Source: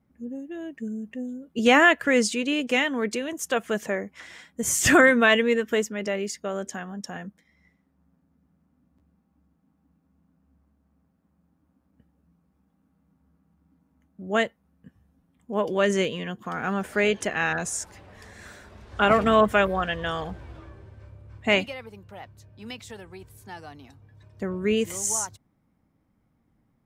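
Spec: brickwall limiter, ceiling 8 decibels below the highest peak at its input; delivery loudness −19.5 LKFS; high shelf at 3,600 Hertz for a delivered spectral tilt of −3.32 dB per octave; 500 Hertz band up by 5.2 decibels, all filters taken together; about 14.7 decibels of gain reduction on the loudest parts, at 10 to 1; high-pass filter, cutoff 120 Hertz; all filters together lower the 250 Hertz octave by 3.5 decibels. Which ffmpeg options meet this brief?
ffmpeg -i in.wav -af "highpass=120,equalizer=frequency=250:width_type=o:gain=-6.5,equalizer=frequency=500:width_type=o:gain=8,highshelf=frequency=3600:gain=-4.5,acompressor=threshold=-24dB:ratio=10,volume=13.5dB,alimiter=limit=-8.5dB:level=0:latency=1" out.wav

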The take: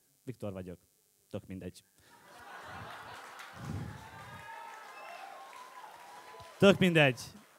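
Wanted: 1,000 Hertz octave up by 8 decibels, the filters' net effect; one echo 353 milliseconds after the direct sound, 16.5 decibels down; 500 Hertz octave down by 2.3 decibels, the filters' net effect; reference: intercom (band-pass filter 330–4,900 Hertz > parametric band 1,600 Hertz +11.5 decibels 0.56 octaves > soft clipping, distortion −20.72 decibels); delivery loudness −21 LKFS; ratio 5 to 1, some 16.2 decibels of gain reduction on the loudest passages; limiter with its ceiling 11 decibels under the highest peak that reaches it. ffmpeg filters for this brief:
ffmpeg -i in.wav -af "equalizer=frequency=500:width_type=o:gain=-4.5,equalizer=frequency=1000:width_type=o:gain=7.5,acompressor=threshold=-37dB:ratio=5,alimiter=level_in=11.5dB:limit=-24dB:level=0:latency=1,volume=-11.5dB,highpass=330,lowpass=4900,equalizer=frequency=1600:width_type=o:width=0.56:gain=11.5,aecho=1:1:353:0.15,asoftclip=threshold=-33dB,volume=22dB" out.wav

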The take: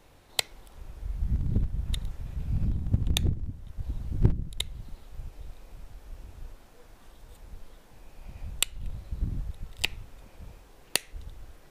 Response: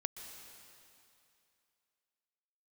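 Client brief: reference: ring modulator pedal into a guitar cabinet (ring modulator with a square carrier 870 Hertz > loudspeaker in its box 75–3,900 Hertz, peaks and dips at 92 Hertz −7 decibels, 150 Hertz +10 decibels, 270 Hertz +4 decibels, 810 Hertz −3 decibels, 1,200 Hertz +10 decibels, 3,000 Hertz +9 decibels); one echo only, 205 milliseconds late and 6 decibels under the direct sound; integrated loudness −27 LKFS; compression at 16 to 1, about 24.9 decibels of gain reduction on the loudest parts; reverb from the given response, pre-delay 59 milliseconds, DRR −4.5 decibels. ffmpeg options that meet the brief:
-filter_complex "[0:a]acompressor=threshold=-41dB:ratio=16,aecho=1:1:205:0.501,asplit=2[link_01][link_02];[1:a]atrim=start_sample=2205,adelay=59[link_03];[link_02][link_03]afir=irnorm=-1:irlink=0,volume=5dB[link_04];[link_01][link_04]amix=inputs=2:normalize=0,aeval=exprs='val(0)*sgn(sin(2*PI*870*n/s))':channel_layout=same,highpass=75,equalizer=frequency=92:width_type=q:width=4:gain=-7,equalizer=frequency=150:width_type=q:width=4:gain=10,equalizer=frequency=270:width_type=q:width=4:gain=4,equalizer=frequency=810:width_type=q:width=4:gain=-3,equalizer=frequency=1200:width_type=q:width=4:gain=10,equalizer=frequency=3000:width_type=q:width=4:gain=9,lowpass=frequency=3900:width=0.5412,lowpass=frequency=3900:width=1.3066,volume=11.5dB"

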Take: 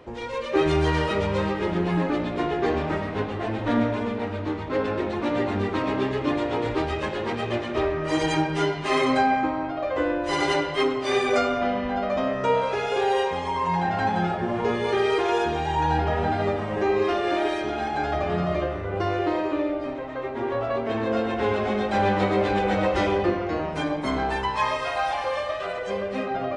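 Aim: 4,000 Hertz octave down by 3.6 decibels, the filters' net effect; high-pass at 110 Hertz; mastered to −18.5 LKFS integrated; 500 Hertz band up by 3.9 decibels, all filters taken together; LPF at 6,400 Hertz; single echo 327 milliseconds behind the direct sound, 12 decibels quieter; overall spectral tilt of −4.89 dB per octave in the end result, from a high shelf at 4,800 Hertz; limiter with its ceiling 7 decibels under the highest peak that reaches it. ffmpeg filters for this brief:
ffmpeg -i in.wav -af "highpass=110,lowpass=6400,equalizer=frequency=500:width_type=o:gain=5,equalizer=frequency=4000:width_type=o:gain=-6.5,highshelf=frequency=4800:gain=4,alimiter=limit=-13.5dB:level=0:latency=1,aecho=1:1:327:0.251,volume=5dB" out.wav

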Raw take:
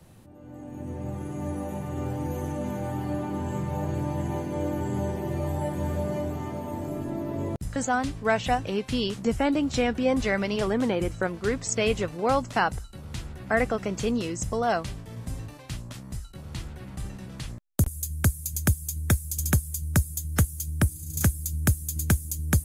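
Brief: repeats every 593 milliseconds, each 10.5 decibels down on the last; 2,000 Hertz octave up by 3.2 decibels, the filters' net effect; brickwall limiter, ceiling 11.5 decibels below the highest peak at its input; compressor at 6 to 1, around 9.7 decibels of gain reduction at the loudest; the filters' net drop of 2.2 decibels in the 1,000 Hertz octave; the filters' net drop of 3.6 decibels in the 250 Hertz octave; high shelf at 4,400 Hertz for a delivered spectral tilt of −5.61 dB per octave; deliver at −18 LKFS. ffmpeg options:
ffmpeg -i in.wav -af "equalizer=frequency=250:width_type=o:gain=-4.5,equalizer=frequency=1000:width_type=o:gain=-4,equalizer=frequency=2000:width_type=o:gain=7,highshelf=frequency=4400:gain=-8,acompressor=threshold=-28dB:ratio=6,alimiter=level_in=1dB:limit=-24dB:level=0:latency=1,volume=-1dB,aecho=1:1:593|1186|1779:0.299|0.0896|0.0269,volume=17.5dB" out.wav

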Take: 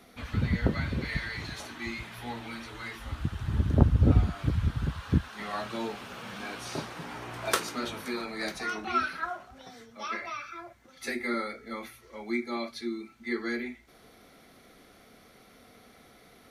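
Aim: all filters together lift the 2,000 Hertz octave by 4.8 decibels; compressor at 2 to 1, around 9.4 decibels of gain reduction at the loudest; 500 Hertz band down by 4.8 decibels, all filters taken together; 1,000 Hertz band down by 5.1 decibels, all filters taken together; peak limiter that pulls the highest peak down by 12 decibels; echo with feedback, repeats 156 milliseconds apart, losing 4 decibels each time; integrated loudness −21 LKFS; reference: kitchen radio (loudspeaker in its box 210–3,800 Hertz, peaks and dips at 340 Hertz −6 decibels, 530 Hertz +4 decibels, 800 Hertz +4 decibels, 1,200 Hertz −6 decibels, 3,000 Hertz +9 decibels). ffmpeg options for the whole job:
ffmpeg -i in.wav -af "equalizer=frequency=500:width_type=o:gain=-4.5,equalizer=frequency=1000:width_type=o:gain=-8,equalizer=frequency=2000:width_type=o:gain=7.5,acompressor=threshold=-32dB:ratio=2,alimiter=level_in=2dB:limit=-24dB:level=0:latency=1,volume=-2dB,highpass=210,equalizer=frequency=340:width_type=q:width=4:gain=-6,equalizer=frequency=530:width_type=q:width=4:gain=4,equalizer=frequency=800:width_type=q:width=4:gain=4,equalizer=frequency=1200:width_type=q:width=4:gain=-6,equalizer=frequency=3000:width_type=q:width=4:gain=9,lowpass=frequency=3800:width=0.5412,lowpass=frequency=3800:width=1.3066,aecho=1:1:156|312|468|624|780|936|1092|1248|1404:0.631|0.398|0.25|0.158|0.0994|0.0626|0.0394|0.0249|0.0157,volume=14.5dB" out.wav

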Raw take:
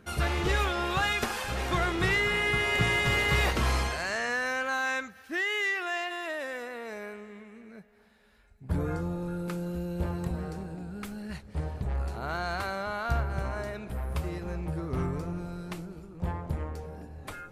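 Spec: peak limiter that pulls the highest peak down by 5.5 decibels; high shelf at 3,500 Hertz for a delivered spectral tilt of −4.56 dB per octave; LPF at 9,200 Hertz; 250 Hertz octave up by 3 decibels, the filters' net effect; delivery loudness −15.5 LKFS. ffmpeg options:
ffmpeg -i in.wav -af "lowpass=9200,equalizer=frequency=250:width_type=o:gain=5,highshelf=frequency=3500:gain=-7.5,volume=16dB,alimiter=limit=-4.5dB:level=0:latency=1" out.wav

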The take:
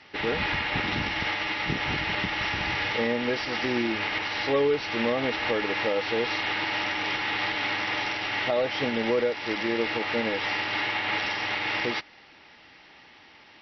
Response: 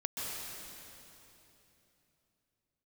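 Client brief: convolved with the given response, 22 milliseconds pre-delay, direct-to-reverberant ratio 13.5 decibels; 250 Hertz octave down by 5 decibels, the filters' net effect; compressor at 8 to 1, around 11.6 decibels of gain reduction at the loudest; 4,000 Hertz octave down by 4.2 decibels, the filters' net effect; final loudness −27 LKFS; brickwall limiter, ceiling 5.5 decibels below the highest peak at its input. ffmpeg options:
-filter_complex "[0:a]equalizer=frequency=250:width_type=o:gain=-6.5,equalizer=frequency=4000:width_type=o:gain=-6,acompressor=threshold=-34dB:ratio=8,alimiter=level_in=5.5dB:limit=-24dB:level=0:latency=1,volume=-5.5dB,asplit=2[link_01][link_02];[1:a]atrim=start_sample=2205,adelay=22[link_03];[link_02][link_03]afir=irnorm=-1:irlink=0,volume=-17dB[link_04];[link_01][link_04]amix=inputs=2:normalize=0,volume=10.5dB"

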